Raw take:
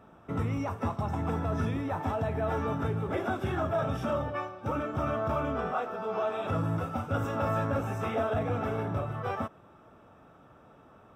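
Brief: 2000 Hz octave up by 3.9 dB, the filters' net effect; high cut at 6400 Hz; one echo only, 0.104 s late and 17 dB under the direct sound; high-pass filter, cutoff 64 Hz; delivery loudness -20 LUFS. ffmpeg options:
-af "highpass=64,lowpass=6.4k,equalizer=f=2k:t=o:g=5.5,aecho=1:1:104:0.141,volume=11dB"

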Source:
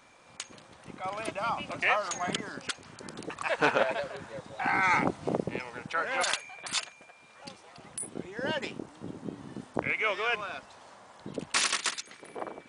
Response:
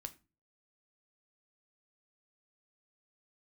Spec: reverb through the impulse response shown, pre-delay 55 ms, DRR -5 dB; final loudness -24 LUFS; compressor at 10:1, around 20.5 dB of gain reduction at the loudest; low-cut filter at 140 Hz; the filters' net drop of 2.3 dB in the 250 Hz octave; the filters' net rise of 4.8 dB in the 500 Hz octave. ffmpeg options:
-filter_complex "[0:a]highpass=140,equalizer=f=250:t=o:g=-5,equalizer=f=500:t=o:g=7,acompressor=threshold=-39dB:ratio=10,asplit=2[a][b];[1:a]atrim=start_sample=2205,adelay=55[c];[b][c]afir=irnorm=-1:irlink=0,volume=9dB[d];[a][d]amix=inputs=2:normalize=0,volume=14dB"

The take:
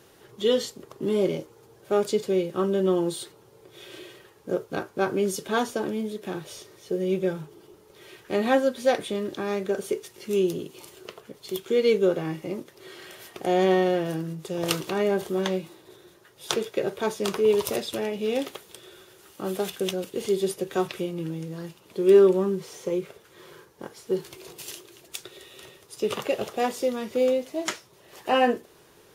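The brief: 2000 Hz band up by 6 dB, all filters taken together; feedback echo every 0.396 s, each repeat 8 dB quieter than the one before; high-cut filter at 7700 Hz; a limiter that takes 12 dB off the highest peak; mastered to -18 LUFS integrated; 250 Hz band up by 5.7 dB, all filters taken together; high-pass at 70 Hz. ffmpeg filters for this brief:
-af "highpass=70,lowpass=7.7k,equalizer=f=250:t=o:g=8.5,equalizer=f=2k:t=o:g=7.5,alimiter=limit=-14.5dB:level=0:latency=1,aecho=1:1:396|792|1188|1584|1980:0.398|0.159|0.0637|0.0255|0.0102,volume=7.5dB"

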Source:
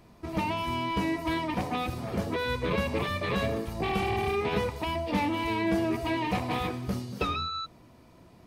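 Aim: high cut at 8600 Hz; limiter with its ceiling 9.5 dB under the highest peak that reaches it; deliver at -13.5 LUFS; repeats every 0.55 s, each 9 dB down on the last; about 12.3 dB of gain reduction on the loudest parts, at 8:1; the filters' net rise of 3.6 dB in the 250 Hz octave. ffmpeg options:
-af "lowpass=8.6k,equalizer=f=250:t=o:g=5,acompressor=threshold=-33dB:ratio=8,alimiter=level_in=8dB:limit=-24dB:level=0:latency=1,volume=-8dB,aecho=1:1:550|1100|1650|2200:0.355|0.124|0.0435|0.0152,volume=26.5dB"

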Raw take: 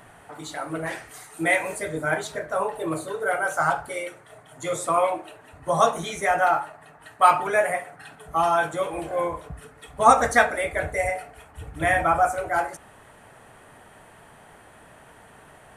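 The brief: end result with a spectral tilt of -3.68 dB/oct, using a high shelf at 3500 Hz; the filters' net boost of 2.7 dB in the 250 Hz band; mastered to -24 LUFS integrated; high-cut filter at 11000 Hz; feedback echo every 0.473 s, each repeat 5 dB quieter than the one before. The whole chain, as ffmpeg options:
-af "lowpass=11k,equalizer=f=250:t=o:g=4,highshelf=f=3.5k:g=-4.5,aecho=1:1:473|946|1419|1892|2365|2838|3311:0.562|0.315|0.176|0.0988|0.0553|0.031|0.0173,volume=-1dB"

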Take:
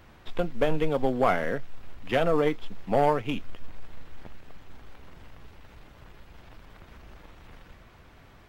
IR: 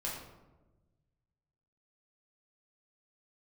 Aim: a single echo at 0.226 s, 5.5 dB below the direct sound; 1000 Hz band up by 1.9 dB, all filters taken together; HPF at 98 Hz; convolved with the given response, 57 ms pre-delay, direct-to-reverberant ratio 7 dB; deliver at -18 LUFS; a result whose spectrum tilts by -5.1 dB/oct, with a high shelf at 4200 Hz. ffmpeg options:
-filter_complex "[0:a]highpass=98,equalizer=f=1k:t=o:g=3,highshelf=f=4.2k:g=-5,aecho=1:1:226:0.531,asplit=2[a][b];[1:a]atrim=start_sample=2205,adelay=57[c];[b][c]afir=irnorm=-1:irlink=0,volume=-9.5dB[d];[a][d]amix=inputs=2:normalize=0,volume=7dB"

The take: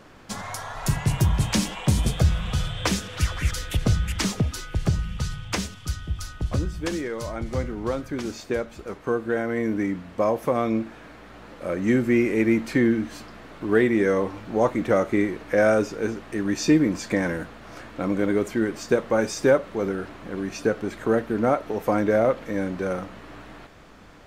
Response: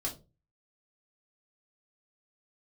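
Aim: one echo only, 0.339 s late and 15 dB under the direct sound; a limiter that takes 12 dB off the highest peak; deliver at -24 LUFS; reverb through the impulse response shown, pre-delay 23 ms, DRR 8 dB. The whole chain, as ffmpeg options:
-filter_complex "[0:a]alimiter=limit=-19.5dB:level=0:latency=1,aecho=1:1:339:0.178,asplit=2[a][b];[1:a]atrim=start_sample=2205,adelay=23[c];[b][c]afir=irnorm=-1:irlink=0,volume=-10dB[d];[a][d]amix=inputs=2:normalize=0,volume=5dB"

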